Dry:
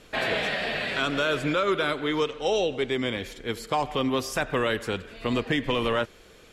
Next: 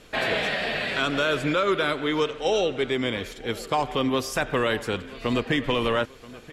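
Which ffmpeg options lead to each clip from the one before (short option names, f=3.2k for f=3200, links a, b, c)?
-filter_complex "[0:a]asplit=2[a][b];[b]adelay=980,lowpass=f=4.2k:p=1,volume=-19dB,asplit=2[c][d];[d]adelay=980,lowpass=f=4.2k:p=1,volume=0.46,asplit=2[e][f];[f]adelay=980,lowpass=f=4.2k:p=1,volume=0.46,asplit=2[g][h];[h]adelay=980,lowpass=f=4.2k:p=1,volume=0.46[i];[a][c][e][g][i]amix=inputs=5:normalize=0,volume=1.5dB"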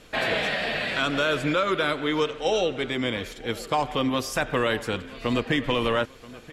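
-af "bandreject=f=400:w=13"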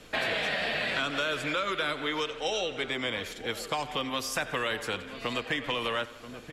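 -filter_complex "[0:a]aecho=1:1:88|176|264|352:0.1|0.047|0.0221|0.0104,acrossover=split=80|500|1600[a][b][c][d];[a]acompressor=threshold=-57dB:ratio=4[e];[b]acompressor=threshold=-40dB:ratio=4[f];[c]acompressor=threshold=-34dB:ratio=4[g];[d]acompressor=threshold=-30dB:ratio=4[h];[e][f][g][h]amix=inputs=4:normalize=0"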